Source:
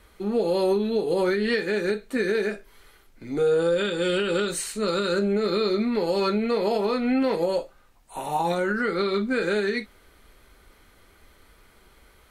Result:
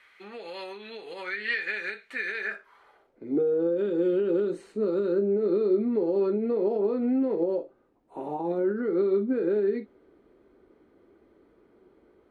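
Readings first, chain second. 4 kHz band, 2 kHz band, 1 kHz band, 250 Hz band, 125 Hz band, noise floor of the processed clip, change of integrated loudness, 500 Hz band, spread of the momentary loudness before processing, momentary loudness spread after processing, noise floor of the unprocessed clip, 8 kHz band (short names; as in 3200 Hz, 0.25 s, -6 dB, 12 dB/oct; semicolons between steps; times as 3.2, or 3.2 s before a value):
under -10 dB, -3.5 dB, -11.0 dB, -2.0 dB, -7.5 dB, -64 dBFS, -2.5 dB, -2.5 dB, 5 LU, 15 LU, -57 dBFS, under -25 dB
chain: compressor, threshold -24 dBFS, peak gain reduction 6 dB; band-pass sweep 2100 Hz -> 340 Hz, 2.37–3.36; gain +7 dB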